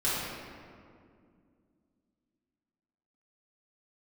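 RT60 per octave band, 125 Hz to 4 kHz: 3.0, 3.4, 2.5, 2.0, 1.7, 1.2 seconds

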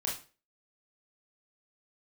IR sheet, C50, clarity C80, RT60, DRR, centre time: 7.0 dB, 13.5 dB, 0.35 s, −3.5 dB, 32 ms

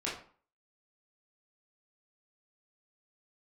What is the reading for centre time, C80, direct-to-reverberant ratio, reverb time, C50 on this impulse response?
37 ms, 10.5 dB, −7.0 dB, 0.45 s, 5.0 dB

